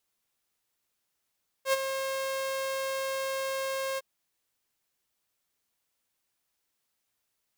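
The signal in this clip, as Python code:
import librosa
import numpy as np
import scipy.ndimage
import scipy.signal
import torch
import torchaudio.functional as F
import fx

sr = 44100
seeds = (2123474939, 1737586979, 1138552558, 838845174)

y = fx.adsr_tone(sr, wave='saw', hz=536.0, attack_ms=80.0, decay_ms=26.0, sustain_db=-9.0, held_s=2.33, release_ms=29.0, level_db=-18.5)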